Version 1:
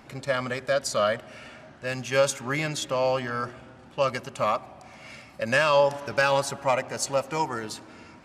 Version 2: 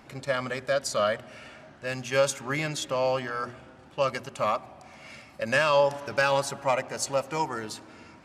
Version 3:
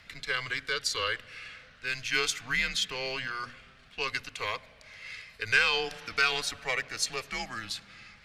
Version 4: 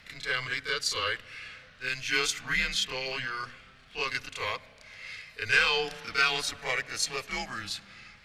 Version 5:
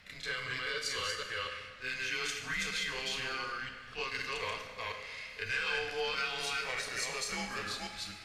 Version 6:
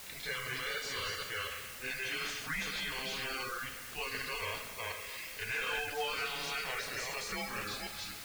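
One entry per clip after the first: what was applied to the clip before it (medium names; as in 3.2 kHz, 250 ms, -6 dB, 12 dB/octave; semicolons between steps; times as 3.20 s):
hum notches 60/120/180/240 Hz; trim -1.5 dB
graphic EQ 125/250/500/1000/2000/4000/8000 Hz -9/-4/-11/-11/+6/+7/-4 dB; frequency shift -120 Hz
reverse echo 31 ms -6.5 dB
chunks repeated in reverse 246 ms, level -2 dB; compression 3:1, threshold -30 dBFS, peak gain reduction 9.5 dB; plate-style reverb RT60 1.3 s, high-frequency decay 0.9×, pre-delay 0 ms, DRR 4 dB; trim -4.5 dB
coarse spectral quantiser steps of 30 dB; word length cut 8-bit, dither triangular; slew-rate limiter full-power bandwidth 54 Hz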